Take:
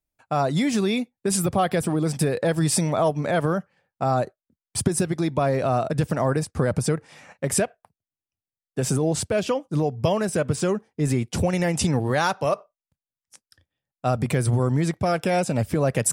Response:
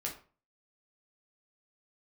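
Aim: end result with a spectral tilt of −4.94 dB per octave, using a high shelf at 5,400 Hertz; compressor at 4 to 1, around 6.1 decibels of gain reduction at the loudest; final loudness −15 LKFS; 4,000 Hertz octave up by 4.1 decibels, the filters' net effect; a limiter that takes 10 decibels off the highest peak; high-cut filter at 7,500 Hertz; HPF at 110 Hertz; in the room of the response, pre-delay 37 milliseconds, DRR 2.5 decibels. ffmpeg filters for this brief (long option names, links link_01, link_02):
-filter_complex "[0:a]highpass=110,lowpass=7500,equalizer=frequency=4000:width_type=o:gain=4,highshelf=frequency=5400:gain=4,acompressor=threshold=-25dB:ratio=4,alimiter=limit=-22dB:level=0:latency=1,asplit=2[link_01][link_02];[1:a]atrim=start_sample=2205,adelay=37[link_03];[link_02][link_03]afir=irnorm=-1:irlink=0,volume=-3.5dB[link_04];[link_01][link_04]amix=inputs=2:normalize=0,volume=15.5dB"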